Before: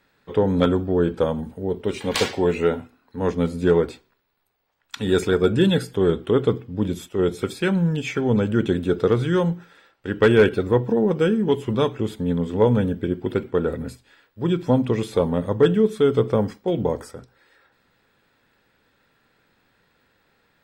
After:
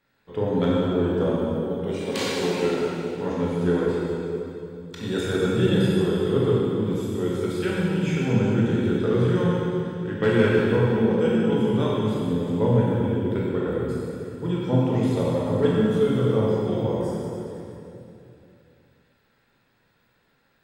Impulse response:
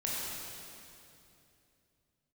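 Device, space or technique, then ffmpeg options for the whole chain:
stairwell: -filter_complex "[0:a]asettb=1/sr,asplit=3[s0][s1][s2];[s0]atrim=end=1.454[s3];[s1]atrim=start=1.45:end=2.62,asetpts=PTS-STARTPTS,afade=t=in:d=0.004:c=qsin,afade=t=out:st=1.166:d=0.004:c=qsin,highpass=f=140:w=0.5412,highpass=f=140:w=1.3066[s4];[s2]atrim=start=2.616[s5];[s3][s4]acrossfade=d=0.004:c1=hsin:c2=qsin[s6];[s6][s5]acrossfade=d=0.004:c1=qsin:c2=hsin[s7];[1:a]atrim=start_sample=2205[s8];[s7][s8]afir=irnorm=-1:irlink=0,volume=0.422"

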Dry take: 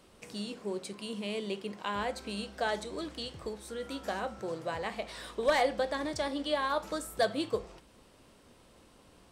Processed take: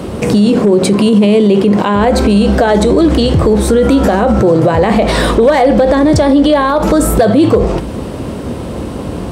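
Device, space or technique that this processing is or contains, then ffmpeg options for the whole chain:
mastering chain: -af "highpass=f=52:w=0.5412,highpass=f=52:w=1.3066,equalizer=f=5400:t=o:w=0.77:g=-1.5,acompressor=threshold=0.0224:ratio=2.5,tiltshelf=f=810:g=8,asoftclip=type=hard:threshold=0.0631,alimiter=level_in=59.6:limit=0.891:release=50:level=0:latency=1,volume=0.891"

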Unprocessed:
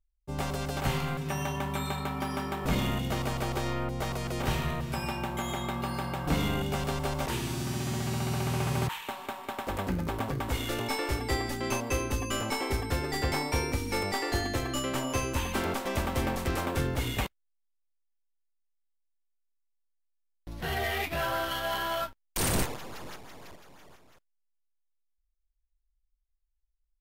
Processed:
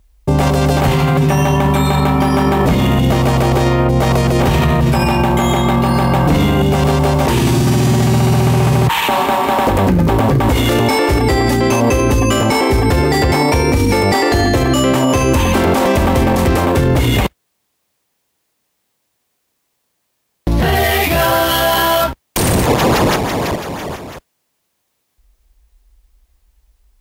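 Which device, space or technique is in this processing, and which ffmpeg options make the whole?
mastering chain: -filter_complex "[0:a]asettb=1/sr,asplit=3[s0][s1][s2];[s0]atrim=end=20.754[s3];[s1]atrim=start=20.75:end=22.04,asetpts=PTS-STARTPTS,afade=t=in:d=0.004:c=qsin,afade=t=out:st=1.286:d=0.004:c=qsin,highshelf=f=4600:g=10[s4];[s2]atrim=start=22.036[s5];[s3][s4]acrossfade=d=0.004:c1=hsin:c2=qsin[s6];[s6][s5]acrossfade=d=0.004:c1=qsin:c2=hsin,highpass=51,equalizer=f=1400:t=o:w=0.32:g=-3.5,acompressor=threshold=0.0224:ratio=3,tiltshelf=f=1300:g=3.5,asoftclip=type=hard:threshold=0.0631,alimiter=level_in=56.2:limit=0.891:release=50:level=0:latency=1,volume=0.596"

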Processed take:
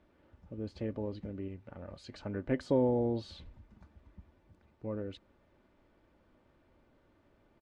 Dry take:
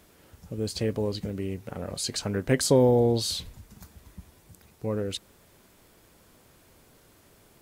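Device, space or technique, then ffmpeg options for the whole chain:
phone in a pocket: -filter_complex "[0:a]lowpass=3100,highshelf=f=2200:g=-9,aecho=1:1:3.4:0.37,asettb=1/sr,asplit=3[s0][s1][s2];[s0]atrim=end=1.484[s3];[s1]atrim=start=1.48:end=2.14,asetpts=PTS-STARTPTS,afade=t=in:d=0.004:c=qsin,afade=t=out:st=0.656:d=0.004:c=qsin,equalizer=f=360:w=0.66:g=-5[s4];[s2]atrim=start=2.136[s5];[s3][s4]acrossfade=d=0.004:c1=hsin:c2=qsin[s6];[s6][s5]acrossfade=d=0.004:c1=qsin:c2=hsin,volume=0.398"

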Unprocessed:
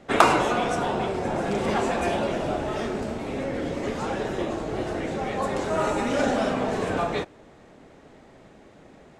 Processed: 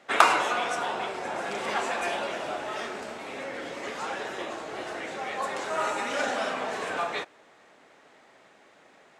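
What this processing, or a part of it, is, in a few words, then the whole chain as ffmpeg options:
filter by subtraction: -filter_complex "[0:a]asplit=2[s0][s1];[s1]lowpass=1500,volume=-1[s2];[s0][s2]amix=inputs=2:normalize=0,volume=0.891"

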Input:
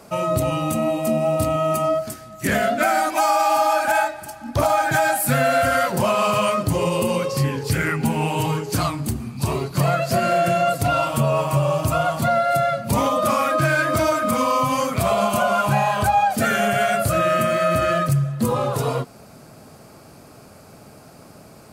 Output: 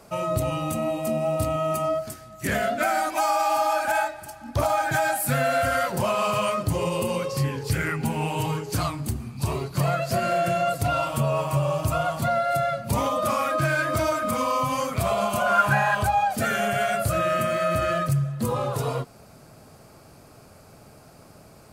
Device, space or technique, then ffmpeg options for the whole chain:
low shelf boost with a cut just above: -filter_complex "[0:a]lowshelf=f=77:g=7,equalizer=f=230:t=o:w=1:g=-3,asettb=1/sr,asplit=3[s0][s1][s2];[s0]atrim=end=15.464[s3];[s1]atrim=start=15.46:end=15.95,asetpts=PTS-STARTPTS,afade=t=in:d=0.004:c=qsin,afade=t=out:st=0.486:d=0.004:c=qsin,equalizer=f=1600:t=o:w=0.47:g=14[s4];[s2]atrim=start=15.946[s5];[s3][s4]acrossfade=d=0.004:c1=hsin:c2=qsin[s6];[s6][s5]acrossfade=d=0.004:c1=qsin:c2=hsin,volume=0.596"

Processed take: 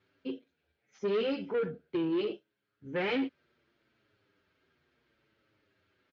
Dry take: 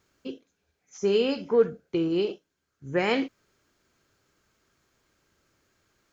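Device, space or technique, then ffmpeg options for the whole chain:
barber-pole flanger into a guitar amplifier: -filter_complex "[0:a]asplit=2[s0][s1];[s1]adelay=7.5,afreqshift=-0.69[s2];[s0][s2]amix=inputs=2:normalize=1,asoftclip=type=tanh:threshold=0.0422,highpass=90,equalizer=f=180:t=q:w=4:g=-4,equalizer=f=760:t=q:w=4:g=-4,equalizer=f=1100:t=q:w=4:g=-6,lowpass=f=3800:w=0.5412,lowpass=f=3800:w=1.3066,volume=1.26"

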